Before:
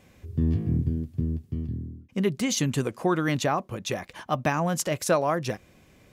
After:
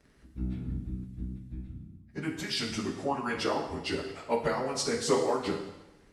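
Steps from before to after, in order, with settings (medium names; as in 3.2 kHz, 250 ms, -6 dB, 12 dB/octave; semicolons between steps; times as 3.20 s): frequency-domain pitch shifter -4.5 st; harmonic-percussive split harmonic -17 dB; two-slope reverb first 0.93 s, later 2.6 s, from -27 dB, DRR 2 dB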